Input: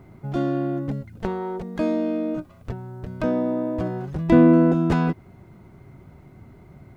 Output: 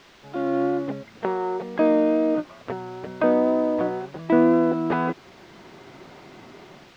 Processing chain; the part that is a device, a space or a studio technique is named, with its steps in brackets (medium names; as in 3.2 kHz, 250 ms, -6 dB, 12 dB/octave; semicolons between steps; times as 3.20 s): dictaphone (band-pass 360–3200 Hz; level rider gain up to 16 dB; wow and flutter 20 cents; white noise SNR 20 dB); distance through air 210 m; trim -5.5 dB